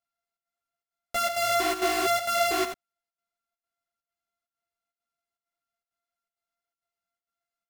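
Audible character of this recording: a buzz of ramps at a fixed pitch in blocks of 64 samples; chopped level 2.2 Hz, depth 65%, duty 80%; a shimmering, thickened sound

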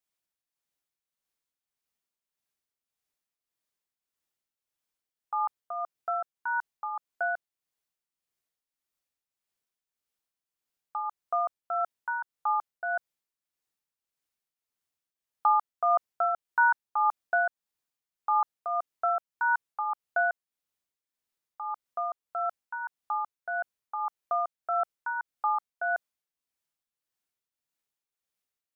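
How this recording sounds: tremolo triangle 1.7 Hz, depth 60%

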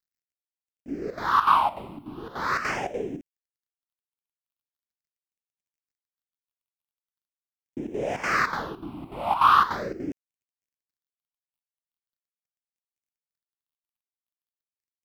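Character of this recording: chopped level 3.4 Hz, depth 65%, duty 75%; a quantiser's noise floor 12-bit, dither none; phasing stages 6, 0.41 Hz, lowest notch 440–1200 Hz

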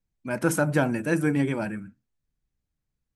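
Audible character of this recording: noise floor -83 dBFS; spectral tilt -5.5 dB/octave

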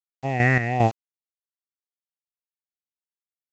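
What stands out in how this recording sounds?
phasing stages 4, 1.4 Hz, lowest notch 800–1800 Hz; a quantiser's noise floor 8-bit, dither none; chopped level 2.5 Hz, depth 60%, duty 45%; µ-law

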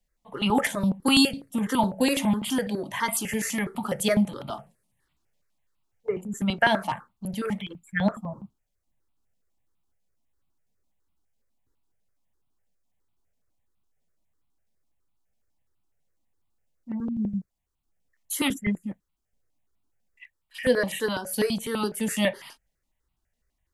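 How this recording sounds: notches that jump at a steady rate 12 Hz 340–1700 Hz

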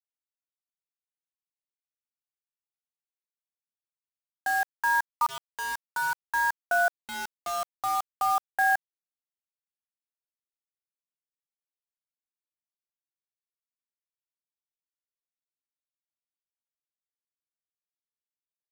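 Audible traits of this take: tremolo saw up 0.57 Hz, depth 90%; a quantiser's noise floor 6-bit, dither none

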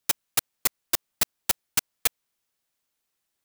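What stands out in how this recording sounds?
noise floor -80 dBFS; spectral tilt 0.0 dB/octave

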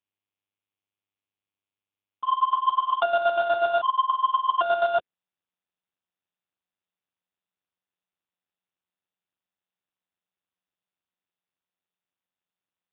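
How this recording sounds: a quantiser's noise floor 10-bit, dither none; chopped level 8.3 Hz, depth 60%, duty 35%; aliases and images of a low sample rate 2.1 kHz, jitter 0%; AMR-NB

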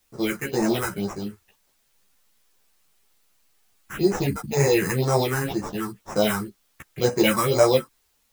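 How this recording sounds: aliases and images of a low sample rate 4.5 kHz, jitter 0%; phasing stages 4, 2 Hz, lowest notch 530–3300 Hz; a quantiser's noise floor 12-bit, dither triangular; a shimmering, thickened sound

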